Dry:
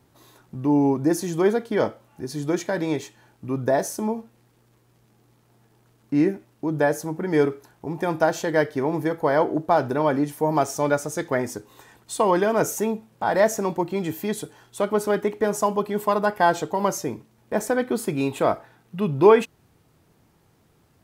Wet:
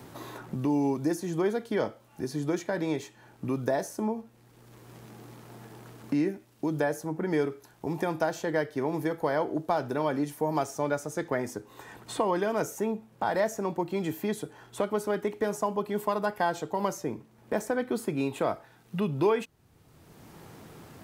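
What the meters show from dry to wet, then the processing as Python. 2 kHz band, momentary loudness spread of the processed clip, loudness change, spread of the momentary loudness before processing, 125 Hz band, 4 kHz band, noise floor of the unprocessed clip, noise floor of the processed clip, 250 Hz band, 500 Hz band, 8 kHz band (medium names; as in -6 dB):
-7.0 dB, 17 LU, -7.0 dB, 12 LU, -5.5 dB, -6.0 dB, -61 dBFS, -59 dBFS, -6.0 dB, -7.5 dB, -9.0 dB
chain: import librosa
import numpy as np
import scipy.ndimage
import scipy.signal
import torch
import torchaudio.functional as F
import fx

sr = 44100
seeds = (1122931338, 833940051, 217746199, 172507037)

y = fx.band_squash(x, sr, depth_pct=70)
y = y * librosa.db_to_amplitude(-7.0)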